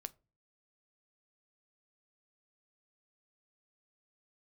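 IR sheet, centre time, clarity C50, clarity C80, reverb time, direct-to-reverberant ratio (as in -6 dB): 2 ms, 25.0 dB, 31.0 dB, 0.35 s, 13.5 dB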